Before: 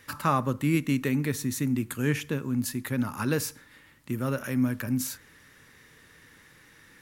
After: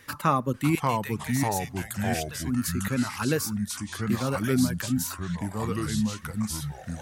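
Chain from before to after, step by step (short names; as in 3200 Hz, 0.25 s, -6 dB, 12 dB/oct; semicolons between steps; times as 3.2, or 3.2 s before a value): reverb removal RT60 1.1 s; 0.75–2.44 passive tone stack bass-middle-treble 10-0-10; echoes that change speed 0.539 s, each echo -3 st, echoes 3; gain +2 dB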